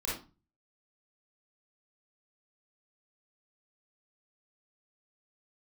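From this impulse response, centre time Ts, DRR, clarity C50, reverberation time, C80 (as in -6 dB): 46 ms, -6.5 dB, 1.5 dB, 0.30 s, 10.0 dB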